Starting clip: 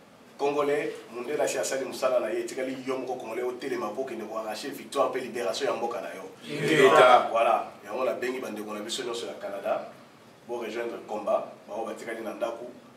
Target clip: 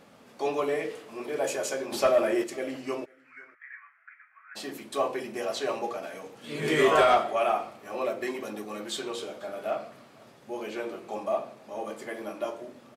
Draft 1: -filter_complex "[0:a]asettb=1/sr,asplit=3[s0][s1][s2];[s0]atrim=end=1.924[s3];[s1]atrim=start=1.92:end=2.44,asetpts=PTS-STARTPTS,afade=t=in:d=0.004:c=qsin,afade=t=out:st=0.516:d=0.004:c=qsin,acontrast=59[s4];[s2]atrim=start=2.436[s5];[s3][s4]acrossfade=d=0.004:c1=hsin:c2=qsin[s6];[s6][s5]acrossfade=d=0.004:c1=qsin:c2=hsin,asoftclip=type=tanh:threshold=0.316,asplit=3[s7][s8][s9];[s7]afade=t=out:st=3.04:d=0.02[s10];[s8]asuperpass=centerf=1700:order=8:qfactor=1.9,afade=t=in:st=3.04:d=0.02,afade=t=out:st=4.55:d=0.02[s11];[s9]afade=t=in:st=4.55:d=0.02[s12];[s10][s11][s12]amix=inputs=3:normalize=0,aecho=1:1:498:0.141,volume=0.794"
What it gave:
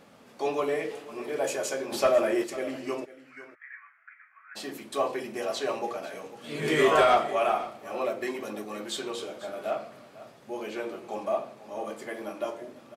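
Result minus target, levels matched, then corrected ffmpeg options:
echo-to-direct +10 dB
-filter_complex "[0:a]asettb=1/sr,asplit=3[s0][s1][s2];[s0]atrim=end=1.924[s3];[s1]atrim=start=1.92:end=2.44,asetpts=PTS-STARTPTS,afade=t=in:d=0.004:c=qsin,afade=t=out:st=0.516:d=0.004:c=qsin,acontrast=59[s4];[s2]atrim=start=2.436[s5];[s3][s4]acrossfade=d=0.004:c1=hsin:c2=qsin[s6];[s6][s5]acrossfade=d=0.004:c1=qsin:c2=hsin,asoftclip=type=tanh:threshold=0.316,asplit=3[s7][s8][s9];[s7]afade=t=out:st=3.04:d=0.02[s10];[s8]asuperpass=centerf=1700:order=8:qfactor=1.9,afade=t=in:st=3.04:d=0.02,afade=t=out:st=4.55:d=0.02[s11];[s9]afade=t=in:st=4.55:d=0.02[s12];[s10][s11][s12]amix=inputs=3:normalize=0,aecho=1:1:498:0.0447,volume=0.794"

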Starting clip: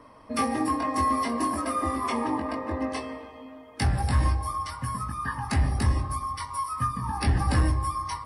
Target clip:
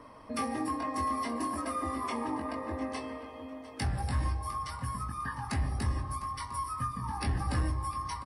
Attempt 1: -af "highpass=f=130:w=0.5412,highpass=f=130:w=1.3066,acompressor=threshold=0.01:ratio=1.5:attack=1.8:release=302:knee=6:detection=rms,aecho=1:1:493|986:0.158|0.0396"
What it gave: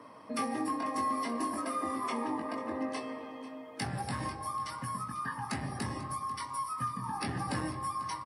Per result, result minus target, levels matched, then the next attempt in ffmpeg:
echo 210 ms early; 125 Hz band -5.5 dB
-af "highpass=f=130:w=0.5412,highpass=f=130:w=1.3066,acompressor=threshold=0.01:ratio=1.5:attack=1.8:release=302:knee=6:detection=rms,aecho=1:1:703|1406:0.158|0.0396"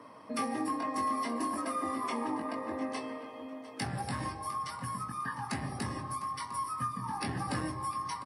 125 Hz band -5.5 dB
-af "acompressor=threshold=0.01:ratio=1.5:attack=1.8:release=302:knee=6:detection=rms,aecho=1:1:703|1406:0.158|0.0396"

